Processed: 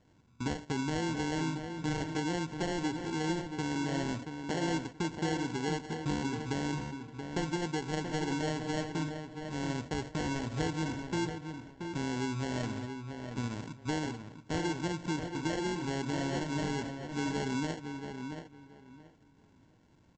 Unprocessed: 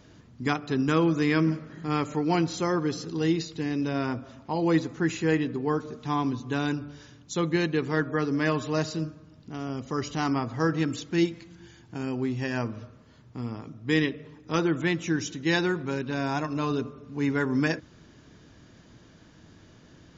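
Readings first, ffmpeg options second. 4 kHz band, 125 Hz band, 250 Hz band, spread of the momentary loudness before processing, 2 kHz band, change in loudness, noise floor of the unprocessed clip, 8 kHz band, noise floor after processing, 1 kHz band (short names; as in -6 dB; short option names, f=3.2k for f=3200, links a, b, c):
-4.0 dB, -5.5 dB, -7.0 dB, 10 LU, -7.5 dB, -7.5 dB, -54 dBFS, n/a, -63 dBFS, -5.5 dB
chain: -filter_complex "[0:a]highshelf=f=2.4k:g=-11,aresample=16000,acrusher=samples=13:mix=1:aa=0.000001,aresample=44100,acompressor=threshold=-31dB:ratio=5,agate=range=-12dB:threshold=-41dB:ratio=16:detection=peak,asplit=2[a][b];[b]adelay=679,lowpass=f=3.4k:p=1,volume=-7dB,asplit=2[c][d];[d]adelay=679,lowpass=f=3.4k:p=1,volume=0.21,asplit=2[e][f];[f]adelay=679,lowpass=f=3.4k:p=1,volume=0.21[g];[a][c][e][g]amix=inputs=4:normalize=0"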